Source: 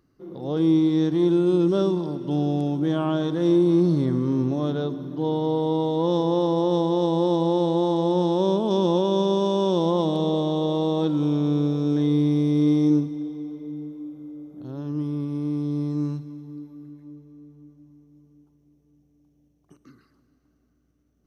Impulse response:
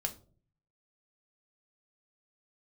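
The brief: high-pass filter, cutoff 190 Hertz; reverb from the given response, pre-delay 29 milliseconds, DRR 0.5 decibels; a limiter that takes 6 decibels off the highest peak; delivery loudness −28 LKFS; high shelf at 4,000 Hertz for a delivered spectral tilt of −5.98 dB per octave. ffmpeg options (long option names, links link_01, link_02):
-filter_complex "[0:a]highpass=190,highshelf=frequency=4000:gain=4,alimiter=limit=-16.5dB:level=0:latency=1,asplit=2[link_01][link_02];[1:a]atrim=start_sample=2205,adelay=29[link_03];[link_02][link_03]afir=irnorm=-1:irlink=0,volume=-1.5dB[link_04];[link_01][link_04]amix=inputs=2:normalize=0,volume=-4dB"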